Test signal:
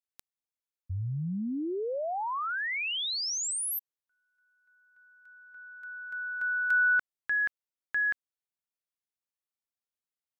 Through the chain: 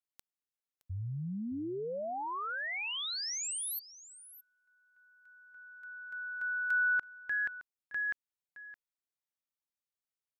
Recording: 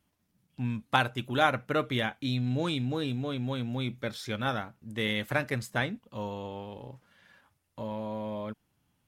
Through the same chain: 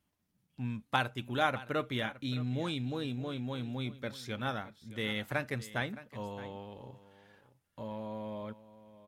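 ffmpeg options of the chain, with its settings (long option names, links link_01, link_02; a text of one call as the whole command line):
ffmpeg -i in.wav -af "aecho=1:1:617:0.15,volume=-5dB" out.wav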